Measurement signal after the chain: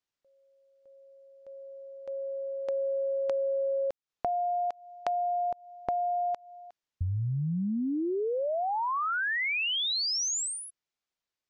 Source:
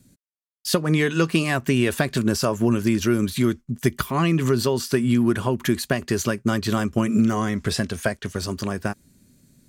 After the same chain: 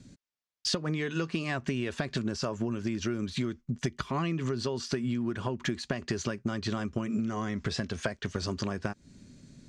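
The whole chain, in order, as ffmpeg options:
-af "lowpass=f=6.6k:w=0.5412,lowpass=f=6.6k:w=1.3066,acompressor=threshold=-32dB:ratio=10,volume=4dB"

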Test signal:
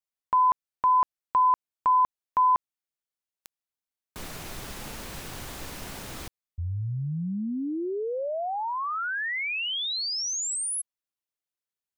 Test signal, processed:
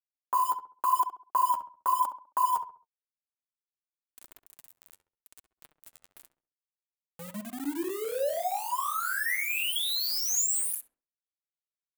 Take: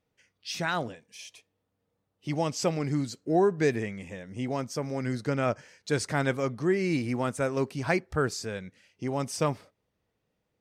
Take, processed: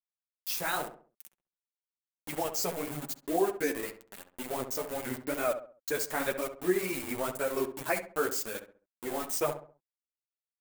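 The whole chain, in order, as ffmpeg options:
-filter_complex "[0:a]afftdn=nr=18:nf=-41,acrossover=split=4900[a][b];[b]acompressor=threshold=-45dB:ratio=4:attack=1:release=60[c];[a][c]amix=inputs=2:normalize=0,highpass=290,equalizer=f=6.5k:t=o:w=0.84:g=8.5,asplit=2[d][e];[e]acompressor=threshold=-29dB:ratio=12:attack=14:release=457:knee=6:detection=peak,volume=0dB[f];[d][f]amix=inputs=2:normalize=0,flanger=delay=1.4:depth=9.7:regen=-15:speed=2:shape=sinusoidal,aeval=exprs='val(0)*gte(abs(val(0)),0.0211)':c=same,aexciter=amount=3.8:drive=5.1:freq=7.5k,flanger=delay=2.7:depth=9:regen=26:speed=0.92:shape=sinusoidal,asplit=2[g][h];[h]adelay=67,lowpass=f=1.5k:p=1,volume=-8.5dB,asplit=2[i][j];[j]adelay=67,lowpass=f=1.5k:p=1,volume=0.38,asplit=2[k][l];[l]adelay=67,lowpass=f=1.5k:p=1,volume=0.38,asplit=2[m][n];[n]adelay=67,lowpass=f=1.5k:p=1,volume=0.38[o];[i][k][m][o]amix=inputs=4:normalize=0[p];[g][p]amix=inputs=2:normalize=0"

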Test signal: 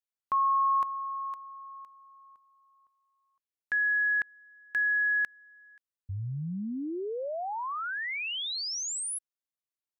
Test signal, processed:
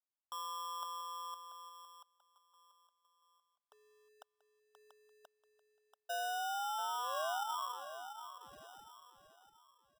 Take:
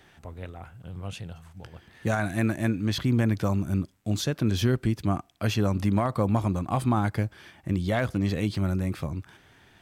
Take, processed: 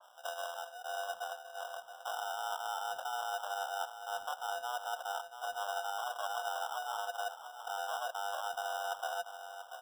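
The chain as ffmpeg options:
-af "areverse,acompressor=threshold=-36dB:ratio=12:attack=14:release=68:knee=1:detection=peak,areverse,aeval=exprs='val(0)*sin(2*PI*250*n/s)':c=same,highpass=f=240:t=q:w=0.5412,highpass=f=240:t=q:w=1.307,lowpass=f=3.3k:t=q:w=0.5176,lowpass=f=3.3k:t=q:w=0.7071,lowpass=f=3.3k:t=q:w=1.932,afreqshift=350,asuperstop=centerf=2600:order=8:qfactor=0.54,aecho=1:1:686|1372|2058|2744:0.316|0.108|0.0366|0.0124,acrusher=samples=20:mix=1:aa=0.000001,adynamicequalizer=threshold=0.00112:dfrequency=2200:dqfactor=0.7:tfrequency=2200:tqfactor=0.7:attack=5:release=100:ratio=0.375:range=2:mode=cutabove:tftype=highshelf,volume=5.5dB"

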